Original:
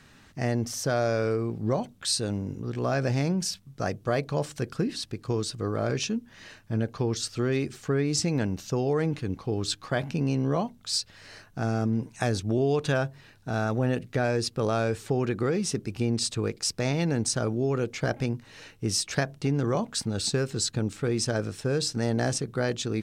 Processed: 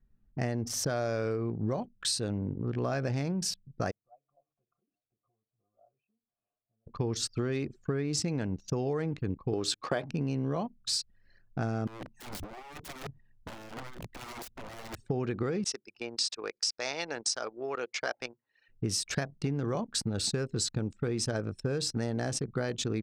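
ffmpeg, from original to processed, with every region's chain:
ffmpeg -i in.wav -filter_complex "[0:a]asettb=1/sr,asplit=3[link_01][link_02][link_03];[link_01]atrim=end=3.914[link_04];[link_02]atrim=start=3.91:end=6.87,asetpts=PTS-STARTPTS,afade=type=in:duration=0.004:curve=qsin,afade=type=out:start_time=2.956:duration=0.004:curve=qsin,acompressor=threshold=-36dB:ratio=12:attack=3.2:release=140:knee=1:detection=peak,asplit=3[link_05][link_06][link_07];[link_05]bandpass=frequency=730:width_type=q:width=8,volume=0dB[link_08];[link_06]bandpass=frequency=1090:width_type=q:width=8,volume=-6dB[link_09];[link_07]bandpass=frequency=2440:width_type=q:width=8,volume=-9dB[link_10];[link_08][link_09][link_10]amix=inputs=3:normalize=0,aecho=1:1:856:0.0668,atrim=end_sample=130536[link_11];[link_03]atrim=start=6.866[link_12];[link_04][link_11]acrossfade=duration=0.004:curve1=hsin:curve2=qsin[link_13];[link_13][link_12]acrossfade=duration=0.004:curve1=qsin:curve2=hsin,asettb=1/sr,asplit=3[link_14][link_15][link_16];[link_14]atrim=end=9.534[link_17];[link_15]atrim=start=9.53:end=10.05,asetpts=PTS-STARTPTS,afade=type=in:duration=0.004:curve=qsin,afade=type=out:start_time=0.516:duration=0.004:curve=qsin,highpass=frequency=290:poles=1,equalizer=frequency=460:width=1.1:gain=5,acontrast=24[link_18];[link_16]atrim=start=10.046[link_19];[link_17][link_18]acrossfade=duration=0.004:curve1=hsin:curve2=qsin[link_20];[link_20][link_19]acrossfade=duration=0.004:curve1=qsin:curve2=hsin,asettb=1/sr,asplit=3[link_21][link_22][link_23];[link_21]atrim=end=11.874[link_24];[link_22]atrim=start=11.87:end=15.02,asetpts=PTS-STARTPTS,afade=type=in:duration=0.004:curve=qsin,afade=type=out:start_time=3.146:duration=0.004:curve=qsin,aecho=1:1:1.1:0.36,atrim=end_sample=138915,acompressor=threshold=-30dB:ratio=12:attack=3.2:release=140:knee=1:detection=peak,aeval=exprs='(mod(53.1*val(0)+1,2)-1)/53.1':channel_layout=same[link_25];[link_23]atrim=start=15.016[link_26];[link_24][link_25]acrossfade=duration=0.004:curve1=hsin:curve2=qsin[link_27];[link_27][link_26]acrossfade=duration=0.004:curve1=qsin:curve2=hsin,asettb=1/sr,asplit=3[link_28][link_29][link_30];[link_28]atrim=end=15.644[link_31];[link_29]atrim=start=15.64:end=18.69,asetpts=PTS-STARTPTS,afade=type=in:duration=0.004:curve=qsin,afade=type=out:start_time=3.046:duration=0.004:curve=qsin,highpass=690,lowpass=7500,adynamicequalizer=threshold=0.00562:dfrequency=5200:dqfactor=2.7:tfrequency=5200:tqfactor=2.7:attack=5:release=100:ratio=0.375:range=3.5:mode=boostabove:tftype=bell[link_32];[link_30]atrim=start=18.686[link_33];[link_31][link_32]acrossfade=duration=0.004:curve1=hsin:curve2=qsin[link_34];[link_34][link_33]acrossfade=duration=0.004:curve1=qsin:curve2=hsin,anlmdn=1.58,acompressor=threshold=-30dB:ratio=6,volume=2dB" out.wav

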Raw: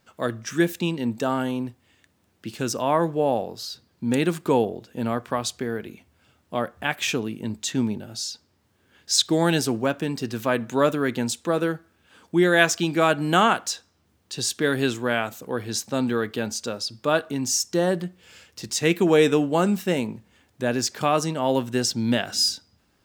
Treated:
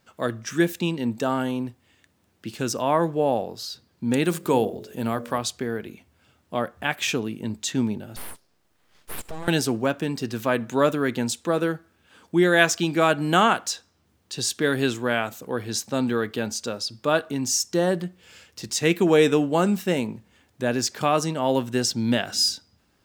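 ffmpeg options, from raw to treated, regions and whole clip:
ffmpeg -i in.wav -filter_complex "[0:a]asettb=1/sr,asplit=3[link_01][link_02][link_03];[link_01]atrim=end=4.244[link_04];[link_02]atrim=start=4.24:end=5.38,asetpts=PTS-STARTPTS,afade=type=in:duration=0.004:curve=qsin,afade=type=out:start_time=1.136:duration=0.004:curve=qsin,bandreject=frequency=47.89:width_type=h:width=4,bandreject=frequency=95.78:width_type=h:width=4,bandreject=frequency=143.67:width_type=h:width=4,bandreject=frequency=191.56:width_type=h:width=4,bandreject=frequency=239.45:width_type=h:width=4,bandreject=frequency=287.34:width_type=h:width=4,bandreject=frequency=335.23:width_type=h:width=4,bandreject=frequency=383.12:width_type=h:width=4,bandreject=frequency=431.01:width_type=h:width=4,bandreject=frequency=478.9:width_type=h:width=4,bandreject=frequency=526.79:width_type=h:width=4,bandreject=frequency=574.68:width_type=h:width=4,bandreject=frequency=622.57:width_type=h:width=4,bandreject=frequency=670.46:width_type=h:width=4,acompressor=mode=upward:threshold=-36dB:ratio=2.5:attack=3.2:release=140:knee=2.83:detection=peak,highshelf=frequency=6900:gain=9[link_05];[link_03]atrim=start=5.376[link_06];[link_04][link_05]acrossfade=duration=0.004:curve1=hsin:curve2=qsin[link_07];[link_07][link_06]acrossfade=duration=0.004:curve1=qsin:curve2=hsin,asettb=1/sr,asplit=3[link_08][link_09][link_10];[link_08]atrim=end=8.164[link_11];[link_09]atrim=start=8.16:end=9.48,asetpts=PTS-STARTPTS,afade=type=in:duration=0.004:curve=qsin,afade=type=out:start_time=1.316:duration=0.004:curve=qsin,acompressor=threshold=-30dB:ratio=4:attack=3.2:release=140:knee=1:detection=peak,aeval=exprs='abs(val(0))':channel_layout=same[link_12];[link_10]atrim=start=9.476[link_13];[link_11][link_12]acrossfade=duration=0.004:curve1=hsin:curve2=qsin[link_14];[link_14][link_13]acrossfade=duration=0.004:curve1=qsin:curve2=hsin" out.wav

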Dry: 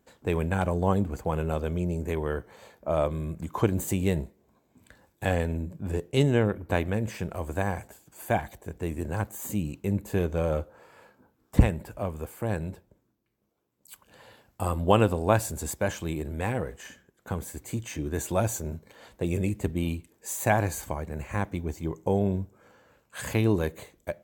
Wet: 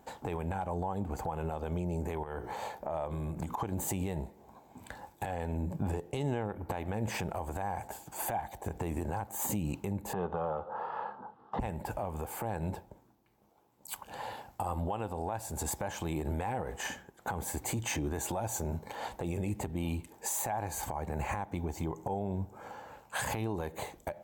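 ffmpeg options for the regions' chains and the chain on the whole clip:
ffmpeg -i in.wav -filter_complex "[0:a]asettb=1/sr,asplit=3[link_01][link_02][link_03];[link_01]atrim=end=2.234[link_04];[link_02]atrim=start=2.23:end=3.63,asetpts=PTS-STARTPTS,afade=type=in:duration=0.004:curve=qsin,afade=type=out:start_time=1.396:duration=0.004:curve=qsin,bandreject=frequency=60:width_type=h:width=6,bandreject=frequency=120:width_type=h:width=6,bandreject=frequency=180:width_type=h:width=6,bandreject=frequency=240:width_type=h:width=6,bandreject=frequency=300:width_type=h:width=6,bandreject=frequency=360:width_type=h:width=6,bandreject=frequency=420:width_type=h:width=6,bandreject=frequency=480:width_type=h:width=6,bandreject=frequency=540:width_type=h:width=6,acompressor=threshold=-38dB:ratio=16:attack=3.2:release=140:knee=1:detection=peak[link_05];[link_03]atrim=start=3.626[link_06];[link_04][link_05]acrossfade=duration=0.004:curve1=hsin:curve2=qsin[link_07];[link_07][link_06]acrossfade=duration=0.004:curve1=qsin:curve2=hsin,asettb=1/sr,asplit=3[link_08][link_09][link_10];[link_08]atrim=end=10.134[link_11];[link_09]atrim=start=10.13:end=11.6,asetpts=PTS-STARTPTS,afade=type=in:duration=0.004:curve=qsin,afade=type=out:start_time=1.466:duration=0.004:curve=qsin,bandreject=frequency=2300:width=11,acompressor=threshold=-44dB:ratio=2.5:attack=3.2:release=140:knee=1:detection=peak,highpass=130,equalizer=frequency=190:width_type=q:width=4:gain=5,equalizer=frequency=290:width_type=q:width=4:gain=-7,equalizer=frequency=450:width_type=q:width=4:gain=4,equalizer=frequency=830:width_type=q:width=4:gain=4,equalizer=frequency=1200:width_type=q:width=4:gain=10,equalizer=frequency=2300:width_type=q:width=4:gain=-8,lowpass=frequency=3400:width=0.5412,lowpass=frequency=3400:width=1.3066[link_12];[link_10]atrim=start=11.596[link_13];[link_11][link_12]acrossfade=duration=0.004:curve1=hsin:curve2=qsin[link_14];[link_14][link_13]acrossfade=duration=0.004:curve1=qsin:curve2=hsin,equalizer=frequency=830:width=2.7:gain=14,acompressor=threshold=-32dB:ratio=10,alimiter=level_in=6.5dB:limit=-24dB:level=0:latency=1:release=83,volume=-6.5dB,volume=6.5dB" out.wav

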